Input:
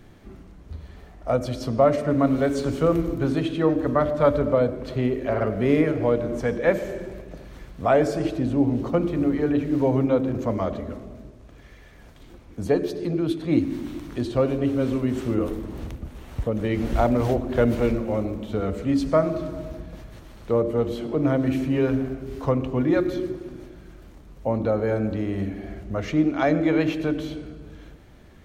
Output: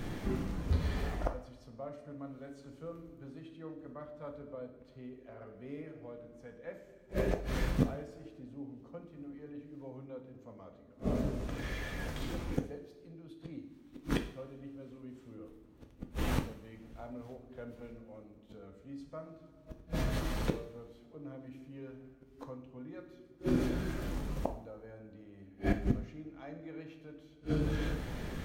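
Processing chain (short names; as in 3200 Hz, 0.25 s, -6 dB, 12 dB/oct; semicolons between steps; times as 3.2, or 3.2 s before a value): flipped gate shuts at -25 dBFS, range -36 dB; two-slope reverb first 0.48 s, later 1.7 s, DRR 4.5 dB; gain +8.5 dB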